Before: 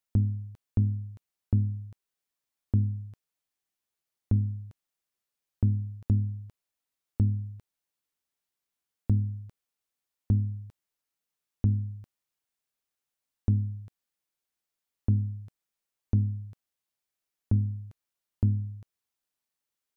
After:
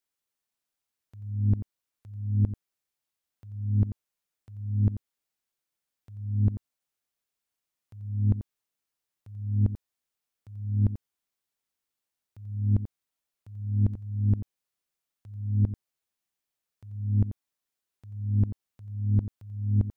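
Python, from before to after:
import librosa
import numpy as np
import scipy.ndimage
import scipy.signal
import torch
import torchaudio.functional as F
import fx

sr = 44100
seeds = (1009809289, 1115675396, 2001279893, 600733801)

y = np.flip(x).copy()
y = y + 10.0 ** (-11.5 / 20.0) * np.pad(y, (int(88 * sr / 1000.0), 0))[:len(y)]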